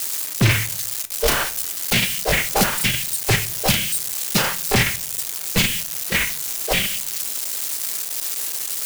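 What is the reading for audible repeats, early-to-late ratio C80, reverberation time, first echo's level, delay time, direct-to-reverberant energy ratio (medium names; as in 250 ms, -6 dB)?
no echo, 23.5 dB, 0.45 s, no echo, no echo, 10.5 dB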